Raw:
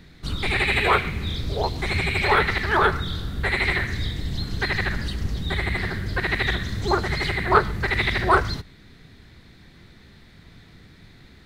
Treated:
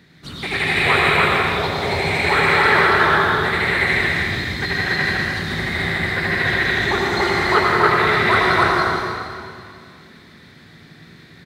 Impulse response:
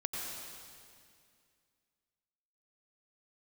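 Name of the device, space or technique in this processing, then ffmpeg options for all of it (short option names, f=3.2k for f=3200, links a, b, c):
stadium PA: -filter_complex "[0:a]highpass=130,equalizer=f=1.8k:t=o:w=0.38:g=3.5,aecho=1:1:177.8|285.7:0.282|1[a];[1:a]atrim=start_sample=2205[b];[a][b]afir=irnorm=-1:irlink=0"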